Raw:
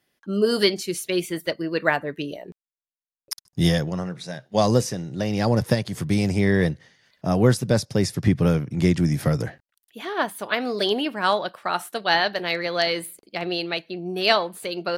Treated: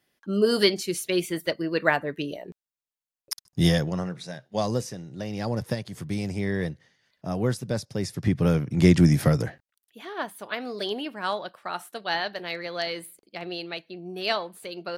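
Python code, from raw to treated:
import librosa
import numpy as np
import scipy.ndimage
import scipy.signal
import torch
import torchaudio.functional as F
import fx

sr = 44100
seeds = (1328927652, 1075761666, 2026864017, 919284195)

y = fx.gain(x, sr, db=fx.line((4.04, -1.0), (4.71, -8.0), (7.97, -8.0), (9.02, 4.0), (10.0, -7.5)))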